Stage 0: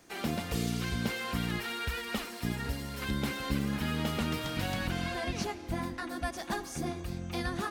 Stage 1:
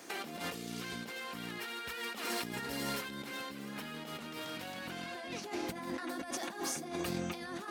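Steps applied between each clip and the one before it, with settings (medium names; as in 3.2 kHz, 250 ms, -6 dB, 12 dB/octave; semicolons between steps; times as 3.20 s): high-pass 250 Hz 12 dB/octave; compressor with a negative ratio -44 dBFS, ratio -1; trim +2.5 dB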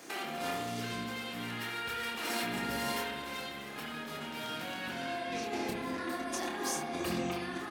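doubling 27 ms -4.5 dB; spring tank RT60 1.3 s, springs 60 ms, chirp 55 ms, DRR 0 dB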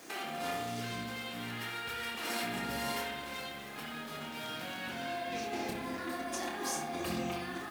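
added noise white -61 dBFS; flutter echo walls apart 10.1 m, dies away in 0.28 s; trim -1.5 dB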